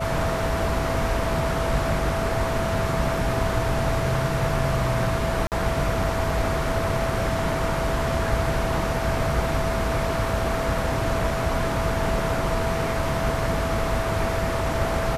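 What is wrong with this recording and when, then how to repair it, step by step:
whine 660 Hz -28 dBFS
5.47–5.52 s: dropout 48 ms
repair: band-stop 660 Hz, Q 30; interpolate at 5.47 s, 48 ms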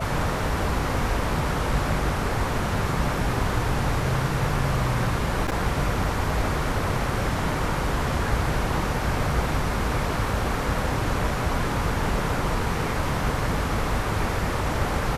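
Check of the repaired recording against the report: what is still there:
nothing left

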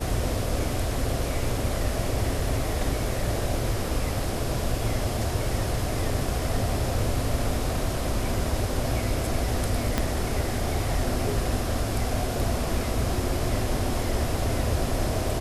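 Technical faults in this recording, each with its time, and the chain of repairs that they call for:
9.98 s: pop -9 dBFS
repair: de-click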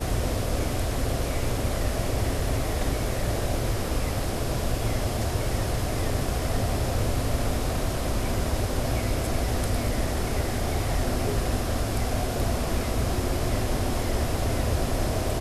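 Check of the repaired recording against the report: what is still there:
9.98 s: pop

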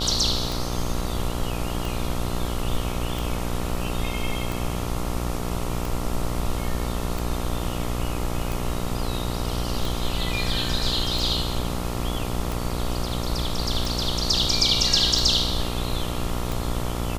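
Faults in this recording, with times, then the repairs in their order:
buzz 60 Hz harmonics 23 -29 dBFS
tick 45 rpm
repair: de-click; de-hum 60 Hz, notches 23

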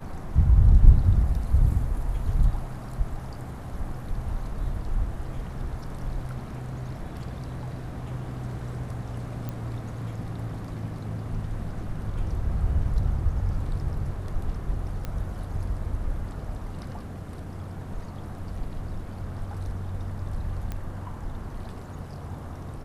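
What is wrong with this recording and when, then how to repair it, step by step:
9.49 s: pop -20 dBFS
15.05 s: pop -19 dBFS
20.72 s: pop -20 dBFS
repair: de-click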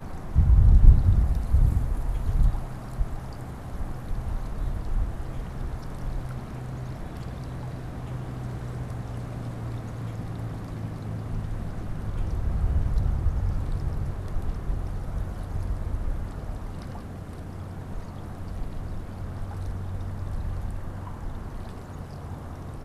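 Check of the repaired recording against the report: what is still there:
20.72 s: pop

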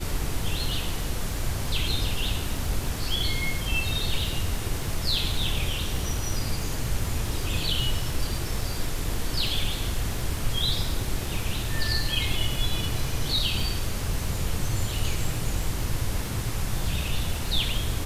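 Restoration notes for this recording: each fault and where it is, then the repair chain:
crackle 39 per s -32 dBFS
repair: de-click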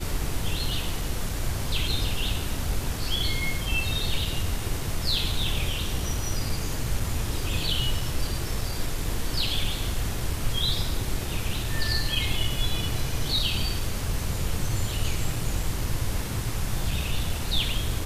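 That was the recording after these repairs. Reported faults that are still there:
nothing left

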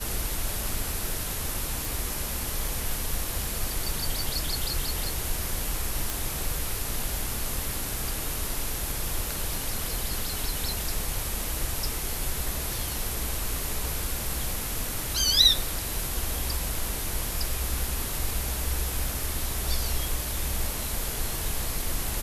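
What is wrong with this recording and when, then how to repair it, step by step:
1.85 s: pop
6.10 s: pop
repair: de-click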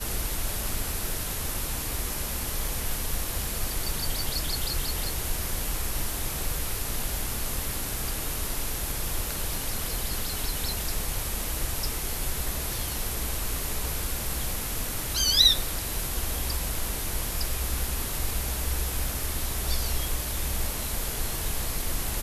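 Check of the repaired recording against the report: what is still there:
nothing left

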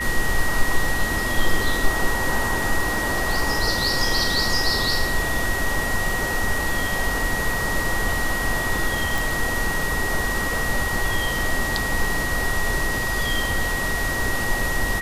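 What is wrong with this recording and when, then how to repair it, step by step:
whine 1.9 kHz -25 dBFS
9.18 s: pop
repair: de-click; band-stop 1.9 kHz, Q 30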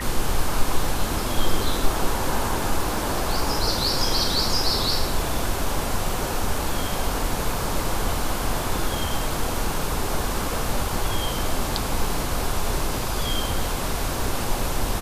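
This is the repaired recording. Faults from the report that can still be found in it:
nothing left

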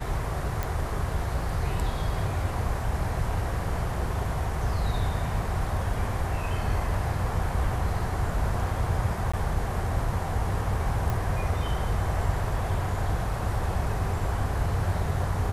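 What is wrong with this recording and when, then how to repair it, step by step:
0.63 s: pop
9.32–9.34 s: dropout 15 ms
11.10 s: pop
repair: de-click; interpolate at 9.32 s, 15 ms

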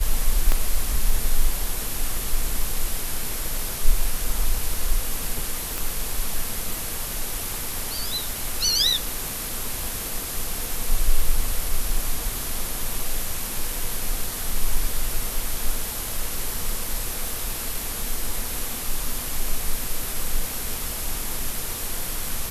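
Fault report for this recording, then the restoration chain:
0.52 s: pop -8 dBFS
5.78 s: pop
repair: de-click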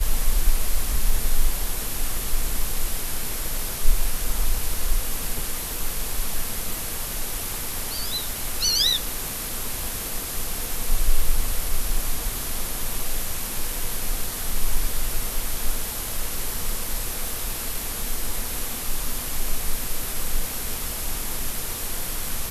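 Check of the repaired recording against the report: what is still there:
0.52 s: pop

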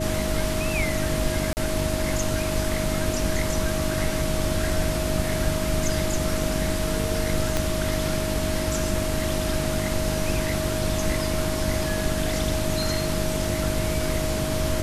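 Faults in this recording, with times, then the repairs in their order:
hum 50 Hz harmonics 7 -30 dBFS
whine 630 Hz -29 dBFS
1.53–1.57 s: dropout 39 ms
7.57 s: pop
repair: de-click; de-hum 50 Hz, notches 7; band-stop 630 Hz, Q 30; interpolate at 1.53 s, 39 ms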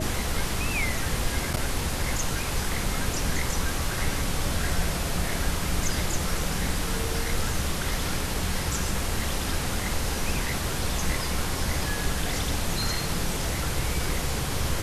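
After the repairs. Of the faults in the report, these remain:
7.57 s: pop

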